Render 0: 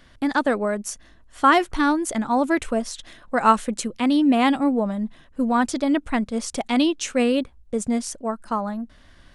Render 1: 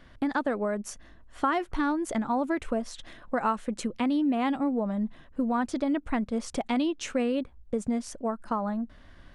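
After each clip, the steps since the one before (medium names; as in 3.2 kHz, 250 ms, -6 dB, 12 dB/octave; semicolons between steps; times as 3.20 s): treble shelf 3.5 kHz -11 dB; compression 3:1, threshold -26 dBFS, peak gain reduction 11.5 dB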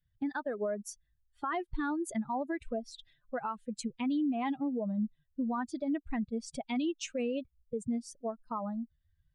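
expander on every frequency bin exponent 2; peak limiter -26 dBFS, peak gain reduction 8 dB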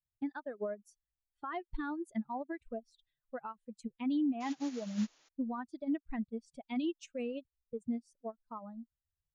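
painted sound noise, 4.40–5.29 s, 250–7200 Hz -49 dBFS; upward expansion 2.5:1, over -42 dBFS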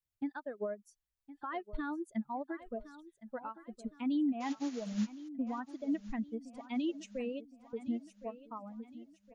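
feedback delay 1064 ms, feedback 45%, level -15.5 dB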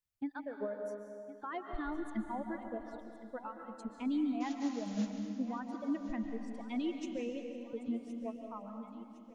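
algorithmic reverb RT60 2.2 s, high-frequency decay 0.9×, pre-delay 100 ms, DRR 4.5 dB; trim -1.5 dB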